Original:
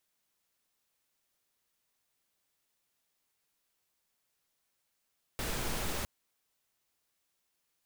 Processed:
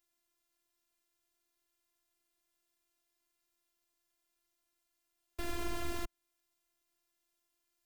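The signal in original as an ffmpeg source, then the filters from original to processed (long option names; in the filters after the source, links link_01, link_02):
-f lavfi -i "anoisesrc=color=pink:amplitude=0.0912:duration=0.66:sample_rate=44100:seed=1"
-filter_complex "[0:a]equalizer=frequency=110:width_type=o:width=2.6:gain=10,acrossover=split=3300[link_01][link_02];[link_02]alimiter=level_in=15dB:limit=-24dB:level=0:latency=1:release=285,volume=-15dB[link_03];[link_01][link_03]amix=inputs=2:normalize=0,afftfilt=real='hypot(re,im)*cos(PI*b)':imag='0':win_size=512:overlap=0.75"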